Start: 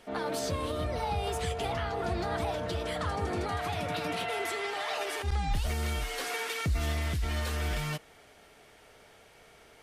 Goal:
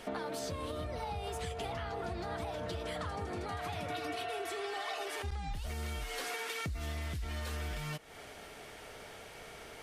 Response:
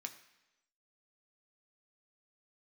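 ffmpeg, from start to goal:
-filter_complex "[0:a]asettb=1/sr,asplit=3[a][b][c];[a]atrim=end=3.904[d];[b]atrim=start=3.9:end=5.08,asetpts=PTS-STARTPTS,afade=t=in:d=0.004:c=qsin,afade=t=out:st=1.176:d=0.004:c=qsin,aecho=1:1:2.7:0.85,atrim=end_sample=52038[e];[c]atrim=start=5.076[f];[d][e]acrossfade=d=0.004:c1=hsin:c2=qsin[g];[g][f]acrossfade=d=0.004:c1=qsin:c2=hsin,acompressor=threshold=-43dB:ratio=10,volume=7dB"

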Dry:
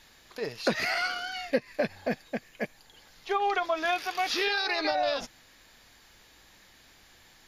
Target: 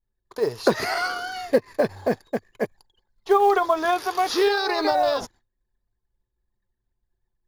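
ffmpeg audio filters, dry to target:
-af "agate=range=-33dB:threshold=-50dB:ratio=3:detection=peak,anlmdn=0.001,equalizer=f=100:t=o:w=0.67:g=11,equalizer=f=400:t=o:w=0.67:g=10,equalizer=f=1k:t=o:w=0.67:g=9,equalizer=f=2.5k:t=o:w=0.67:g=-8,equalizer=f=10k:t=o:w=0.67:g=8,acrusher=bits=8:mode=log:mix=0:aa=0.000001,volume=2.5dB"

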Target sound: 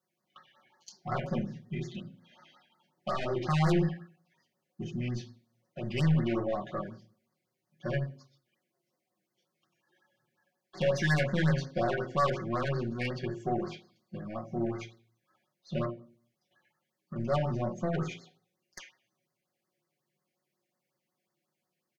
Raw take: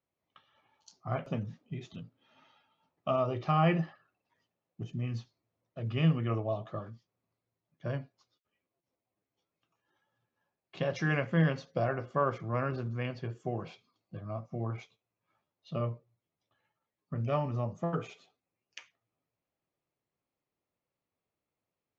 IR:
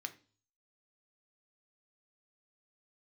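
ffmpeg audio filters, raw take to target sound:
-filter_complex "[0:a]asettb=1/sr,asplit=3[a][b][c];[a]atrim=end=15.854[d];[b]atrim=start=15.85:end=17.16,asetpts=PTS-STARTPTS,afade=t=in:d=0.004:c=qsin,afade=t=out:st=1.306:d=0.004:c=qsin,acompressor=threshold=-43dB:ratio=6[e];[c]atrim=start=17.156[f];[d][e]acrossfade=d=0.004:c1=hsin:c2=qsin[g];[g][f]acrossfade=d=0.004:c1=qsin:c2=hsin[h];[1:a]atrim=start_sample=2205,asetrate=39690,aresample=44100[i];[h][i]afir=irnorm=-1:irlink=0,aeval=exprs='(tanh(44.7*val(0)+0.25)-tanh(0.25))/44.7':c=same,aecho=1:1:5.4:0.93,afftfilt=real='re*(1-between(b*sr/1024,990*pow(3000/990,0.5+0.5*sin(2*PI*5.5*pts/sr))/1.41,990*pow(3000/990,0.5+0.5*sin(2*PI*5.5*pts/sr))*1.41))':imag='im*(1-between(b*sr/1024,990*pow(3000/990,0.5+0.5*sin(2*PI*5.5*pts/sr))/1.41,990*pow(3000/990,0.5+0.5*sin(2*PI*5.5*pts/sr))*1.41))':win_size=1024:overlap=0.75,volume=7dB"

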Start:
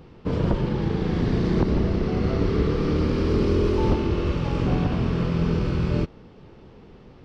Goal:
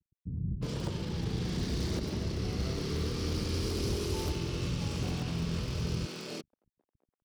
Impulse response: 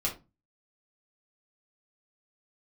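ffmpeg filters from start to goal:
-filter_complex "[0:a]anlmdn=0.251,acrossover=split=350[a][b];[b]crystalizer=i=3:c=0[c];[a][c]amix=inputs=2:normalize=0,highpass=58,equalizer=f=950:w=0.31:g=-7.5,asoftclip=type=hard:threshold=-19dB,aemphasis=mode=production:type=50fm,aeval=exprs='sgn(val(0))*max(abs(val(0))-0.00422,0)':c=same,acrossover=split=230[d][e];[e]adelay=360[f];[d][f]amix=inputs=2:normalize=0,volume=-5.5dB"

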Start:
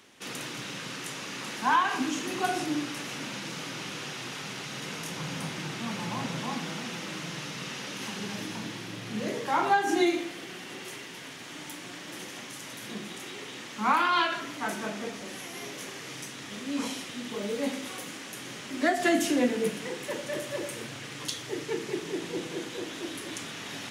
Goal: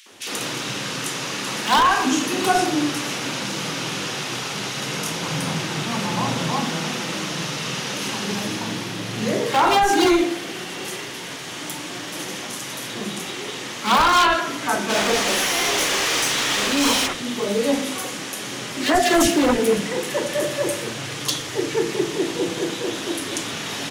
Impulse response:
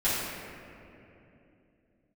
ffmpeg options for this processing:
-filter_complex "[0:a]acontrast=53,asplit=3[a][b][c];[a]afade=t=out:st=14.88:d=0.02[d];[b]asplit=2[e][f];[f]highpass=f=720:p=1,volume=23dB,asoftclip=type=tanh:threshold=-17dB[g];[e][g]amix=inputs=2:normalize=0,lowpass=f=6.7k:p=1,volume=-6dB,afade=t=in:st=14.88:d=0.02,afade=t=out:st=17.06:d=0.02[h];[c]afade=t=in:st=17.06:d=0.02[i];[d][h][i]amix=inputs=3:normalize=0,aeval=exprs='0.178*(abs(mod(val(0)/0.178+3,4)-2)-1)':c=same,acrossover=split=220|2000[j][k][l];[k]adelay=60[m];[j]adelay=110[n];[n][m][l]amix=inputs=3:normalize=0,volume=5.5dB"

